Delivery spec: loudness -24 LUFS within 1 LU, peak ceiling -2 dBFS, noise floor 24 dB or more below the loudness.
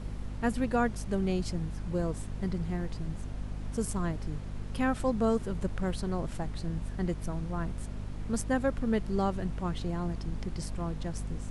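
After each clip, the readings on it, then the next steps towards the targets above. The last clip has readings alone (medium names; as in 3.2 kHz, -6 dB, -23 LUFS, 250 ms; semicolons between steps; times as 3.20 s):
hum 50 Hz; highest harmonic 250 Hz; hum level -36 dBFS; noise floor -40 dBFS; noise floor target -58 dBFS; loudness -33.5 LUFS; peak level -16.0 dBFS; loudness target -24.0 LUFS
-> hum notches 50/100/150/200/250 Hz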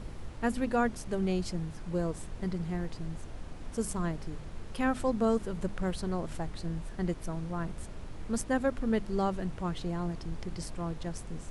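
hum not found; noise floor -43 dBFS; noise floor target -58 dBFS
-> noise print and reduce 15 dB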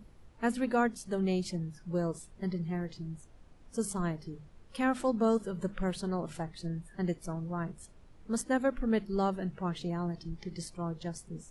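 noise floor -57 dBFS; noise floor target -58 dBFS
-> noise print and reduce 6 dB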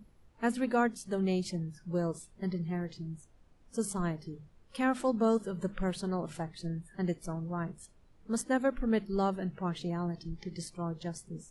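noise floor -62 dBFS; loudness -34.0 LUFS; peak level -17.5 dBFS; loudness target -24.0 LUFS
-> trim +10 dB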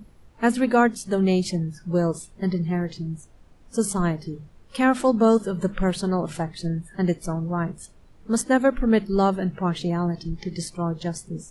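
loudness -24.0 LUFS; peak level -7.5 dBFS; noise floor -52 dBFS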